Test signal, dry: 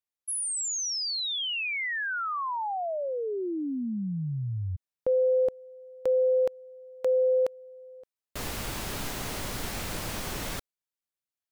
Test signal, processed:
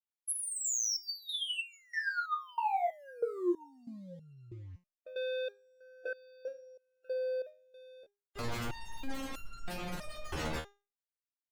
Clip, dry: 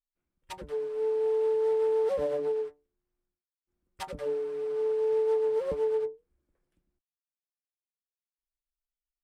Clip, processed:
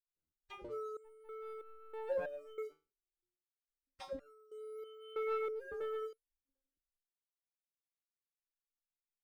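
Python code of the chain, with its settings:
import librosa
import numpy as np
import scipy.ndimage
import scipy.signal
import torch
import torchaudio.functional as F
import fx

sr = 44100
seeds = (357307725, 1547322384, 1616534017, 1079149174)

y = fx.spec_gate(x, sr, threshold_db=-20, keep='strong')
y = fx.leveller(y, sr, passes=2)
y = fx.resonator_held(y, sr, hz=3.1, low_hz=78.0, high_hz=1400.0)
y = y * 10.0 ** (2.5 / 20.0)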